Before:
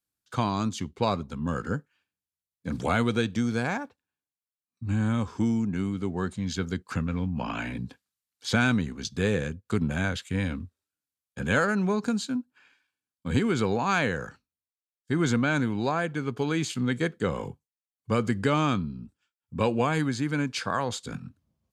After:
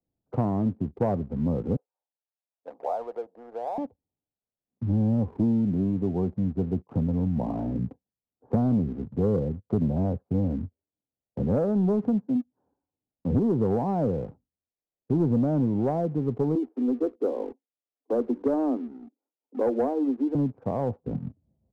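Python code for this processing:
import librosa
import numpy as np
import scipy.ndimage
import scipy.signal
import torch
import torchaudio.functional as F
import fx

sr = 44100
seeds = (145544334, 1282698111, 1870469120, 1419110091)

y = fx.highpass(x, sr, hz=630.0, slope=24, at=(1.76, 3.78))
y = fx.steep_highpass(y, sr, hz=240.0, slope=96, at=(16.55, 20.35))
y = scipy.signal.sosfilt(scipy.signal.butter(6, 780.0, 'lowpass', fs=sr, output='sos'), y)
y = fx.leveller(y, sr, passes=1)
y = fx.band_squash(y, sr, depth_pct=40)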